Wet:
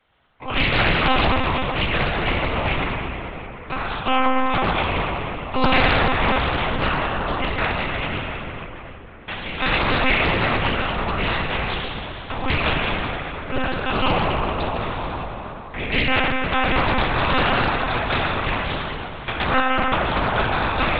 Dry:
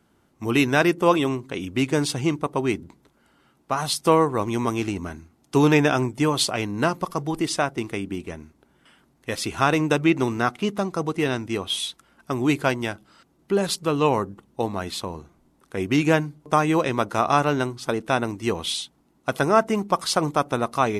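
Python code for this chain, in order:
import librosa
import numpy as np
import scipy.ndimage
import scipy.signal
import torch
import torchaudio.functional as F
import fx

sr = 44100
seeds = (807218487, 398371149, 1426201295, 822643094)

y = fx.spec_clip(x, sr, under_db=21)
y = y + 10.0 ** (-16.0 / 20.0) * np.pad(y, (int(437 * sr / 1000.0), 0))[:len(y)]
y = fx.rev_plate(y, sr, seeds[0], rt60_s=3.8, hf_ratio=0.55, predelay_ms=0, drr_db=-5.5)
y = fx.lpc_monotone(y, sr, seeds[1], pitch_hz=260.0, order=10)
y = fx.doppler_dist(y, sr, depth_ms=0.37)
y = F.gain(torch.from_numpy(y), -3.5).numpy()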